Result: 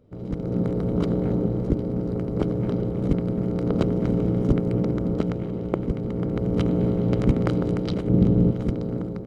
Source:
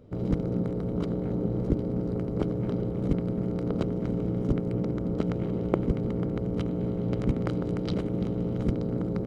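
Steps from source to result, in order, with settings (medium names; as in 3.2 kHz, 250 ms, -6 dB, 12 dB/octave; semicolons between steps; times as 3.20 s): 8.07–8.51 s: bass shelf 480 Hz +11.5 dB; level rider gain up to 15 dB; trim -5.5 dB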